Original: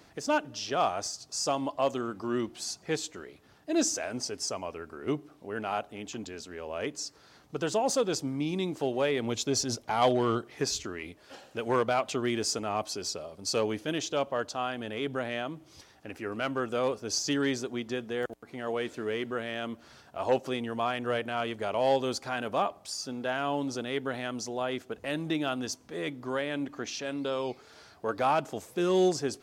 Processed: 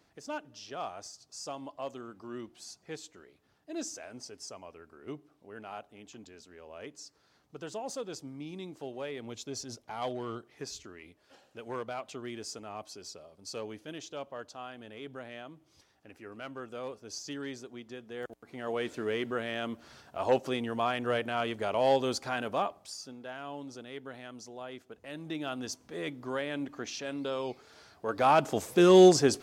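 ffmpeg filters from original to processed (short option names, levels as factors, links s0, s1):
-af "volume=7.94,afade=t=in:st=18.03:d=0.92:silence=0.281838,afade=t=out:st=22.3:d=0.89:silence=0.281838,afade=t=in:st=25.08:d=0.72:silence=0.375837,afade=t=in:st=28.06:d=0.59:silence=0.334965"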